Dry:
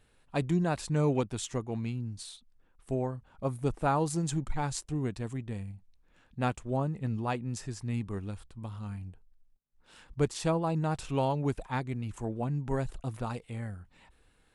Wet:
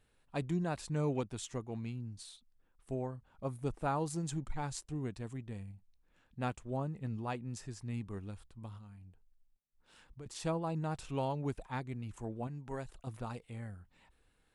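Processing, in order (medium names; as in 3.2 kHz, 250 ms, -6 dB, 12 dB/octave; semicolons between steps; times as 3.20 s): 8.77–10.26 s: compression 3:1, threshold -46 dBFS, peak gain reduction 18 dB; 12.47–13.07 s: bass shelf 350 Hz -7 dB; trim -6.5 dB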